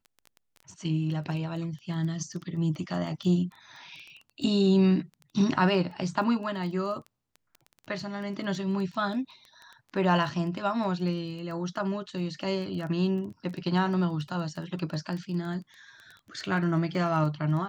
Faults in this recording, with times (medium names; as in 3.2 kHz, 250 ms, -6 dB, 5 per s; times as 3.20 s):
crackle 12 per s -36 dBFS